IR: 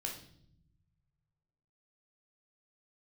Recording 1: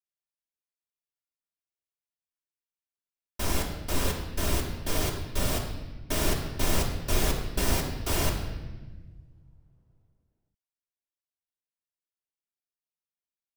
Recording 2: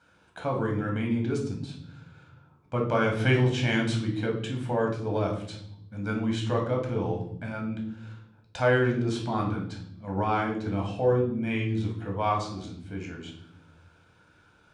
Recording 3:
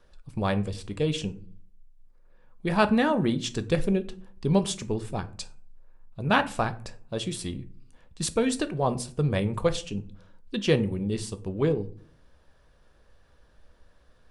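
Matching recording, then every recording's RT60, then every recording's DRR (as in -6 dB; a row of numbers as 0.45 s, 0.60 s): 2; 1.3 s, 0.65 s, 0.45 s; -3.0 dB, 0.0 dB, 10.0 dB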